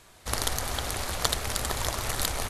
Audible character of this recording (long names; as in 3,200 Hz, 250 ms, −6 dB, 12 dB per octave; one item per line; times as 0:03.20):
background noise floor −55 dBFS
spectral slope −2.5 dB per octave